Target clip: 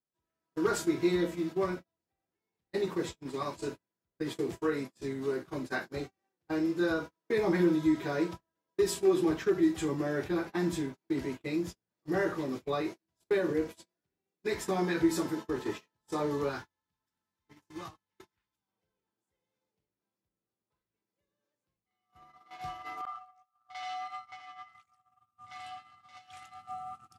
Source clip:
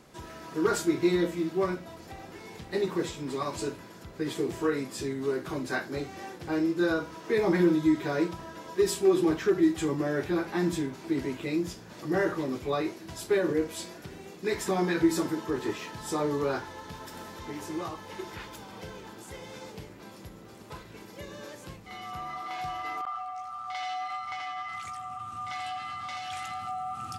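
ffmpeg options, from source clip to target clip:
ffmpeg -i in.wav -filter_complex "[0:a]agate=range=-41dB:threshold=-34dB:ratio=16:detection=peak,asettb=1/sr,asplit=3[link_01][link_02][link_03];[link_01]atrim=end=16.494[link_04];[link_02]atrim=start=16.49:end=18.68,asetpts=PTS-STARTPTS,afade=type=in:duration=0.004:curve=qsin,afade=type=out:start_time=2.186:duration=0.004:curve=qsin,equalizer=frequency=500:width_type=o:width=1.4:gain=-9[link_05];[link_03]atrim=start=18.676[link_06];[link_04][link_05]acrossfade=duration=0.004:curve1=hsin:curve2=qsin[link_07];[link_07][link_06]acrossfade=duration=0.004:curve1=qsin:curve2=hsin,volume=-3dB" out.wav

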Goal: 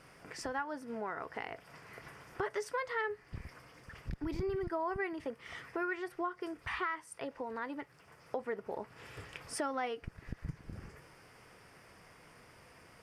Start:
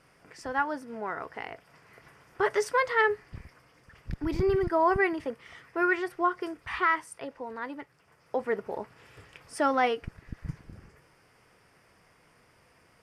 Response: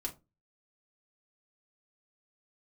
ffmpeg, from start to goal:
-af "acompressor=threshold=-42dB:ratio=3,volume=3.5dB"

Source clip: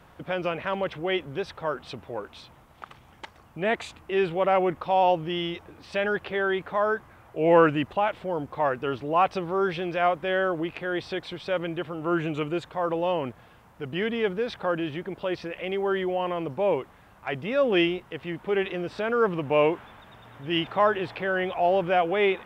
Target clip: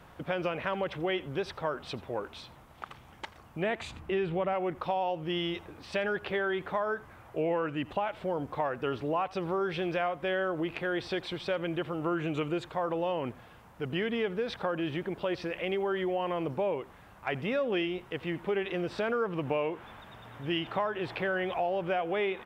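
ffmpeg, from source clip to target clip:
ffmpeg -i in.wav -filter_complex "[0:a]asettb=1/sr,asplit=3[link_01][link_02][link_03];[link_01]atrim=end=3.814[link_04];[link_02]atrim=start=3.81:end=4.53,asetpts=PTS-STARTPTS,afade=type=in:duration=0.004:curve=qsin,afade=type=out:start_time=0.716:duration=0.004:curve=qsin,bass=frequency=250:gain=7,treble=frequency=4000:gain=-4[link_05];[link_03]atrim=start=4.526[link_06];[link_04][link_05]acrossfade=duration=0.004:curve1=hsin:curve2=qsin[link_07];[link_07][link_06]acrossfade=duration=0.004:curve1=qsin:curve2=hsin,acompressor=threshold=-27dB:ratio=8,aecho=1:1:85:0.0891" out.wav

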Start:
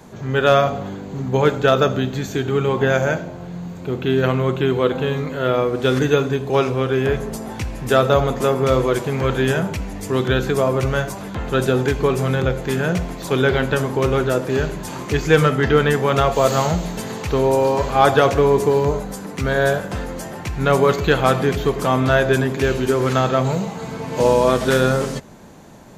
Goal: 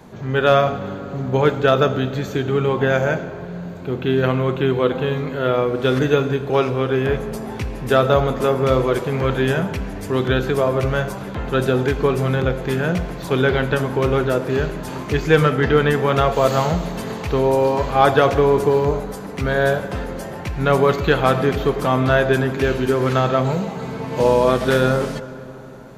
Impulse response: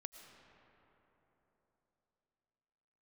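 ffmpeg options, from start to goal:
-filter_complex "[0:a]asplit=2[link_01][link_02];[link_02]lowpass=frequency=7600:width=0.5412,lowpass=frequency=7600:width=1.3066[link_03];[1:a]atrim=start_sample=2205[link_04];[link_03][link_04]afir=irnorm=-1:irlink=0,volume=-1dB[link_05];[link_01][link_05]amix=inputs=2:normalize=0,volume=-3.5dB"

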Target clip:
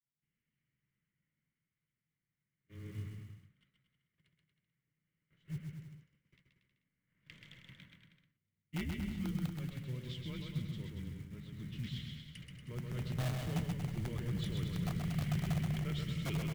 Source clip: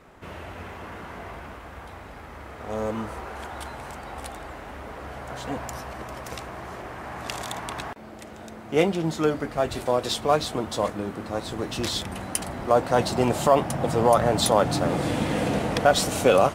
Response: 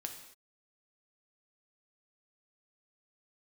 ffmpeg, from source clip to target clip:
-filter_complex "[0:a]agate=range=-30dB:threshold=-32dB:ratio=16:detection=peak,adynamicequalizer=threshold=0.0141:dfrequency=190:dqfactor=0.95:tfrequency=190:tqfactor=0.95:attack=5:release=100:ratio=0.375:range=3:mode=boostabove:tftype=bell,asplit=3[link_01][link_02][link_03];[link_01]bandpass=frequency=270:width_type=q:width=8,volume=0dB[link_04];[link_02]bandpass=frequency=2290:width_type=q:width=8,volume=-6dB[link_05];[link_03]bandpass=frequency=3010:width_type=q:width=8,volume=-9dB[link_06];[link_04][link_05][link_06]amix=inputs=3:normalize=0,asplit=2[link_07][link_08];[link_08]aeval=exprs='(mod(14.1*val(0)+1,2)-1)/14.1':channel_layout=same,volume=-3.5dB[link_09];[link_07][link_09]amix=inputs=2:normalize=0,acrusher=bits=6:mode=log:mix=0:aa=0.000001,flanger=delay=2.4:depth=7.8:regen=82:speed=1.6:shape=triangular,afreqshift=-120,aecho=1:1:130|234|317.2|383.8|437:0.631|0.398|0.251|0.158|0.1,volume=-6.5dB"

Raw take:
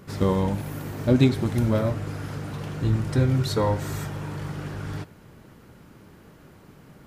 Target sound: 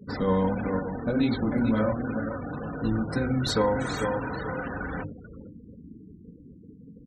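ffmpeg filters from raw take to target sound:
ffmpeg -i in.wav -filter_complex "[0:a]highpass=42,highshelf=frequency=11000:gain=-6,aecho=1:1:441|882|1323|1764:0.251|0.0904|0.0326|0.0117,asettb=1/sr,asplit=3[link_01][link_02][link_03];[link_01]atrim=end=0.804[link_04];[link_02]atrim=start=0.8:end=3.47,asetpts=PTS-STARTPTS,afade=type=in:duration=0.004:curve=qsin,afade=type=out:start_time=2.666:duration=0.004:curve=qsin,flanger=delay=17.5:depth=6.8:speed=2.1[link_05];[link_03]atrim=start=3.466[link_06];[link_04][link_05]acrossfade=duration=0.004:curve1=hsin:curve2=qsin[link_07];[link_07][link_06]acrossfade=duration=0.004:curve1=qsin:curve2=hsin,afftfilt=real='re*gte(hypot(re,im),0.0126)':imag='im*gte(hypot(re,im),0.0126)':win_size=1024:overlap=0.75,alimiter=limit=-21dB:level=0:latency=1:release=22,adynamicequalizer=threshold=0.00126:dfrequency=1500:dqfactor=6:tfrequency=1500:tqfactor=6:attack=5:release=100:ratio=0.375:range=2.5:mode=boostabove:tftype=bell,bandreject=frequency=50:width_type=h:width=6,bandreject=frequency=100:width_type=h:width=6,bandreject=frequency=150:width_type=h:width=6,bandreject=frequency=200:width_type=h:width=6,bandreject=frequency=250:width_type=h:width=6,bandreject=frequency=300:width_type=h:width=6,bandreject=frequency=350:width_type=h:width=6,bandreject=frequency=400:width_type=h:width=6,bandreject=frequency=450:width_type=h:width=6,bandreject=frequency=500:width_type=h:width=6,aecho=1:1:4:0.55,volume=4.5dB" out.wav

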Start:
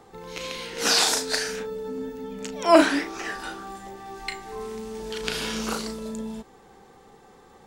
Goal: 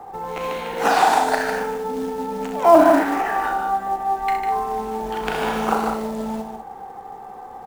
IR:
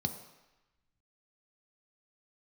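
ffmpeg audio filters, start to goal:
-filter_complex "[0:a]firequalizer=gain_entry='entry(340,0);entry(1200,2);entry(4900,-16);entry(8000,-11)':delay=0.05:min_phase=1,aecho=1:1:65|150|203:0.447|0.501|0.266,acrusher=bits=4:mode=log:mix=0:aa=0.000001,acrossover=split=320[link_01][link_02];[link_02]acompressor=threshold=-23dB:ratio=4[link_03];[link_01][link_03]amix=inputs=2:normalize=0,equalizer=frequency=780:width=2.3:gain=14.5,volume=3.5dB"

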